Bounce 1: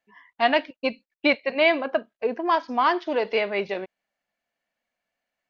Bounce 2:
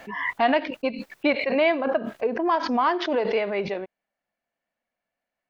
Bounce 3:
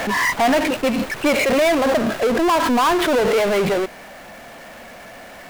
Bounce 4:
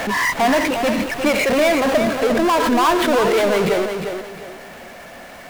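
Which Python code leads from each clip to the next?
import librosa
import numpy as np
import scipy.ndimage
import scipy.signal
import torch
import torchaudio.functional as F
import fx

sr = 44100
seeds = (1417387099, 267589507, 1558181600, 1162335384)

y1 = fx.high_shelf(x, sr, hz=2400.0, db=-9.5)
y1 = fx.pre_swell(y1, sr, db_per_s=49.0)
y2 = scipy.signal.medfilt(y1, 9)
y2 = fx.power_curve(y2, sr, exponent=0.35)
y2 = y2 * librosa.db_to_amplitude(-1.5)
y3 = fx.echo_feedback(y2, sr, ms=354, feedback_pct=30, wet_db=-7.0)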